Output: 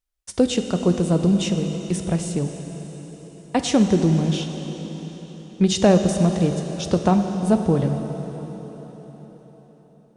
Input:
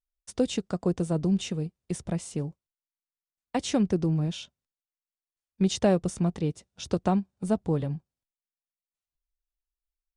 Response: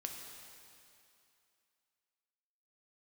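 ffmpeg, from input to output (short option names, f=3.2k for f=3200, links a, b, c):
-filter_complex "[0:a]asplit=2[a][b];[1:a]atrim=start_sample=2205,asetrate=24255,aresample=44100[c];[b][c]afir=irnorm=-1:irlink=0,volume=0dB[d];[a][d]amix=inputs=2:normalize=0,volume=1.5dB"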